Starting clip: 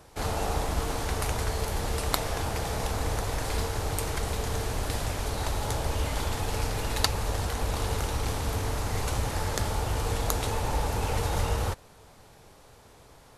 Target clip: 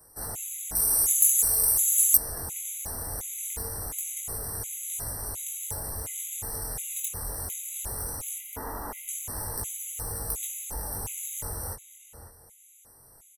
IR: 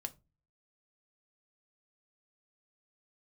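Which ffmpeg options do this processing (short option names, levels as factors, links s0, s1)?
-filter_complex "[0:a]acrossover=split=430|3000[s0][s1][s2];[s1]acompressor=threshold=0.0316:ratio=6[s3];[s0][s3][s2]amix=inputs=3:normalize=0,asettb=1/sr,asplit=3[s4][s5][s6];[s4]atrim=end=8.384[s7];[s5]atrim=start=8.38:end=9.09,asetpts=PTS-STARTPTS,afade=t=in:d=0.004:c=qsin,afade=t=out:st=0.706:d=0.004:c=qsin,equalizer=f=125:t=o:w=1:g=-12,equalizer=f=250:t=o:w=1:g=9,equalizer=f=500:t=o:w=1:g=3,equalizer=f=1000:t=o:w=1:g=11,equalizer=f=2000:t=o:w=1:g=3,equalizer=f=4000:t=o:w=1:g=-6,equalizer=f=8000:t=o:w=1:g=-12[s8];[s6]atrim=start=9.086[s9];[s7][s8]acrossfade=d=0.004:c1=hsin:c2=qsin[s10];[s10][s9]acrossfade=d=0.004:c1=qsin:c2=hsin,acontrast=60,asoftclip=type=hard:threshold=0.133,aexciter=amount=6.6:drive=9.1:freq=6600,asplit=2[s11][s12];[s12]adelay=548,lowpass=f=4300:p=1,volume=0.299,asplit=2[s13][s14];[s14]adelay=548,lowpass=f=4300:p=1,volume=0.27,asplit=2[s15][s16];[s16]adelay=548,lowpass=f=4300:p=1,volume=0.27[s17];[s13][s15][s17]amix=inputs=3:normalize=0[s18];[s11][s18]amix=inputs=2:normalize=0,flanger=delay=19:depth=4.8:speed=0.2,asettb=1/sr,asplit=3[s19][s20][s21];[s19]atrim=end=0.754[s22];[s20]atrim=start=0.75:end=2.17,asetpts=PTS-STARTPTS,afade=t=in:d=0.004:c=qsin,afade=t=out:st=1.416:d=0.004:c=qsin,bass=f=250:g=-3,treble=f=4000:g=13[s23];[s21]atrim=start=2.166[s24];[s22][s23]acrossfade=d=0.004:c1=hsin:c2=qsin[s25];[s25][s24]acrossfade=d=0.004:c1=qsin:c2=hsin,afftfilt=real='re*gt(sin(2*PI*1.4*pts/sr)*(1-2*mod(floor(b*sr/1024/2000),2)),0)':imag='im*gt(sin(2*PI*1.4*pts/sr)*(1-2*mod(floor(b*sr/1024/2000),2)),0)':win_size=1024:overlap=0.75,volume=0.251"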